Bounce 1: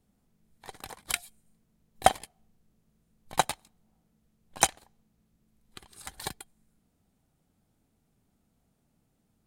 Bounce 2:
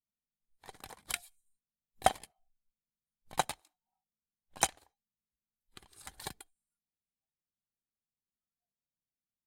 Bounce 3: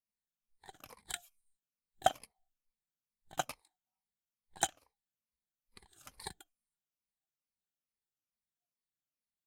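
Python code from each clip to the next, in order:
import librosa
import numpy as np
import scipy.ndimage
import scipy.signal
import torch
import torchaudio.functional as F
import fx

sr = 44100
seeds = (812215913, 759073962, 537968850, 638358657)

y1 = fx.noise_reduce_blind(x, sr, reduce_db=27)
y1 = y1 * 10.0 ** (-6.0 / 20.0)
y2 = fx.spec_ripple(y1, sr, per_octave=0.9, drift_hz=-2.3, depth_db=12)
y2 = y2 * 10.0 ** (-6.0 / 20.0)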